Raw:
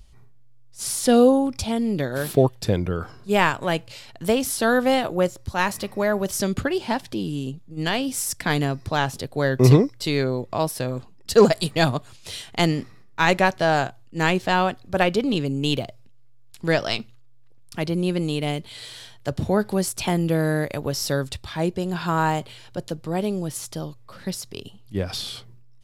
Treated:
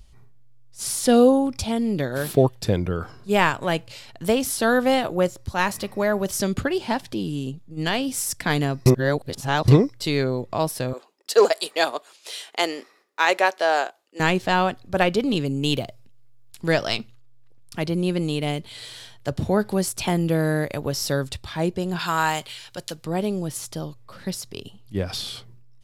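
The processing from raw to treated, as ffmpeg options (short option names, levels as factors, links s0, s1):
-filter_complex "[0:a]asettb=1/sr,asplit=3[s0][s1][s2];[s0]atrim=end=10.934[s3];[s1]atrim=start=10.93:end=14.2,asetpts=PTS-STARTPTS,afade=t=in:d=0.004:c=qsin,afade=t=out:st=3.266:d=0.004:c=qsin,highpass=f=380:w=0.5412,highpass=f=380:w=1.3066[s4];[s2]atrim=start=14.196[s5];[s3][s4]acrossfade=d=0.004:c1=hsin:c2=qsin[s6];[s6][s5]acrossfade=d=0.004:c1=qsin:c2=hsin,asettb=1/sr,asplit=3[s7][s8][s9];[s7]atrim=end=15.194[s10];[s8]atrim=start=15.19:end=16.97,asetpts=PTS-STARTPTS,afade=t=in:d=0.004:c=qsin,afade=t=out:st=1.776:d=0.004:c=qsin,highshelf=f=9400:g=5[s11];[s9]atrim=start=16.966[s12];[s10][s11]acrossfade=d=0.004:c1=hsin:c2=qsin[s13];[s13][s12]acrossfade=d=0.004:c1=qsin:c2=hsin,asettb=1/sr,asplit=3[s14][s15][s16];[s14]atrim=end=21.994[s17];[s15]atrim=start=21.99:end=23.05,asetpts=PTS-STARTPTS,afade=t=in:d=0.004:c=qsin,afade=t=out:st=1.056:d=0.004:c=qsin,tiltshelf=f=970:g=-8[s18];[s16]atrim=start=23.046[s19];[s17][s18]acrossfade=d=0.004:c1=hsin:c2=qsin[s20];[s20][s19]acrossfade=d=0.004:c1=qsin:c2=hsin,asplit=3[s21][s22][s23];[s21]atrim=end=8.862[s24];[s22]atrim=start=8.858:end=9.682,asetpts=PTS-STARTPTS,areverse[s25];[s23]atrim=start=9.678[s26];[s24][s25]acrossfade=d=0.004:c1=hsin:c2=hsin[s27];[s27][s26]acrossfade=d=0.004:c1=hsin:c2=hsin"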